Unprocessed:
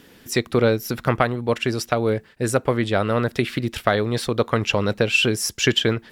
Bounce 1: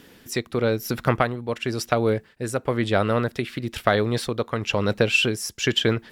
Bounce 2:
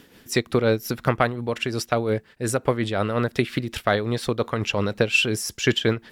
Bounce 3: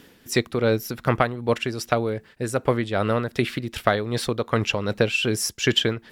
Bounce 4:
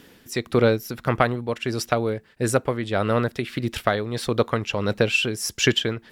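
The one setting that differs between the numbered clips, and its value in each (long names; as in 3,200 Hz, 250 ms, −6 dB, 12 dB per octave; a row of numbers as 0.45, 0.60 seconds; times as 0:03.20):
amplitude tremolo, speed: 1, 5.6, 2.6, 1.6 Hertz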